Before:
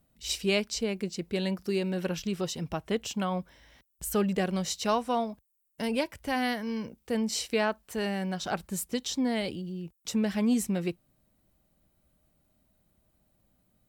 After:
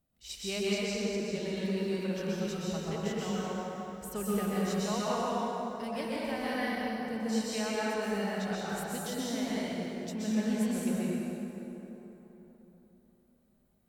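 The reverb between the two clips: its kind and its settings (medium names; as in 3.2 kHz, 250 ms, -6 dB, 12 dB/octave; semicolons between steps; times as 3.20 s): plate-style reverb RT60 3.7 s, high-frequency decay 0.55×, pre-delay 110 ms, DRR -8 dB; trim -11 dB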